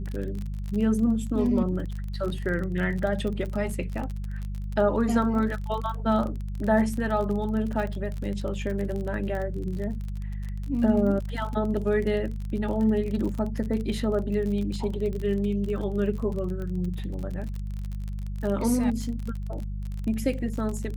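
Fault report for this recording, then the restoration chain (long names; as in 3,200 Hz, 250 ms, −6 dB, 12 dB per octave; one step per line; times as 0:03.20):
surface crackle 35 per second −31 dBFS
mains hum 50 Hz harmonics 4 −32 dBFS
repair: click removal
hum removal 50 Hz, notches 4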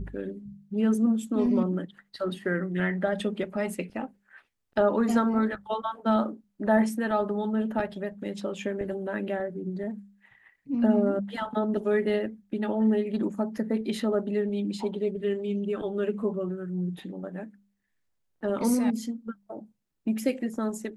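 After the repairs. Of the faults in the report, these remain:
none of them is left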